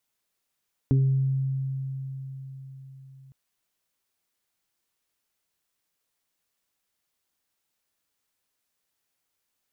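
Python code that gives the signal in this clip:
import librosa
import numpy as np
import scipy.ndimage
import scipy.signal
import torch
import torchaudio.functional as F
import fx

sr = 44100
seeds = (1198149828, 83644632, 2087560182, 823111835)

y = fx.additive(sr, length_s=2.41, hz=134.0, level_db=-17.0, upper_db=(-3, -15), decay_s=4.69, upper_decays_s=(0.23, 0.75))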